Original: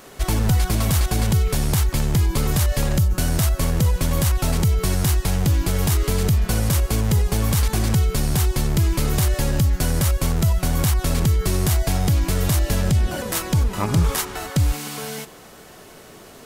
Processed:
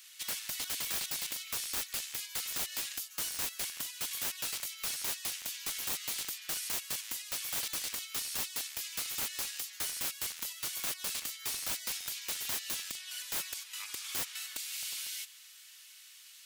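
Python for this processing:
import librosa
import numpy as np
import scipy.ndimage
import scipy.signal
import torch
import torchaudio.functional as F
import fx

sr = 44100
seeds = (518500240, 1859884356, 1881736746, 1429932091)

y = fx.ladder_highpass(x, sr, hz=2100.0, resonance_pct=20)
y = (np.mod(10.0 ** (28.0 / 20.0) * y + 1.0, 2.0) - 1.0) / 10.0 ** (28.0 / 20.0)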